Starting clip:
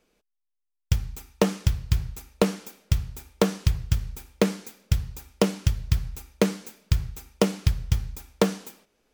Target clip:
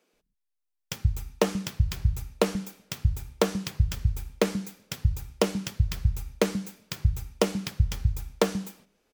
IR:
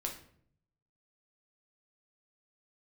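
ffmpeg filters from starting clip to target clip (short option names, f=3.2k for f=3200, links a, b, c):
-filter_complex "[0:a]acrossover=split=190[a][b];[a]adelay=130[c];[c][b]amix=inputs=2:normalize=0,volume=-1dB"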